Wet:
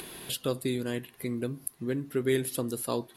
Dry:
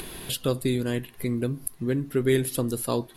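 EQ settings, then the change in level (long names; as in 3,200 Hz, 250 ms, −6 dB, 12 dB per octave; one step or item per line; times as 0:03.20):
high-pass filter 170 Hz 6 dB per octave
−3.5 dB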